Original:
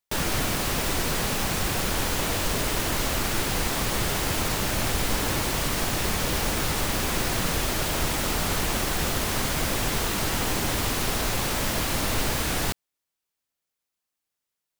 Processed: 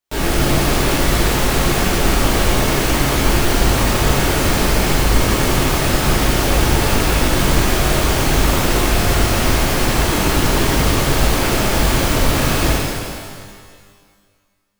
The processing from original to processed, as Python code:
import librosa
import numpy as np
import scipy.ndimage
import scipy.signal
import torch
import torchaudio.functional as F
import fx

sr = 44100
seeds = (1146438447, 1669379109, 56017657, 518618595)

y = fx.halfwave_hold(x, sr)
y = fx.rev_shimmer(y, sr, seeds[0], rt60_s=1.8, semitones=12, shimmer_db=-8, drr_db=-8.5)
y = y * librosa.db_to_amplitude(-5.0)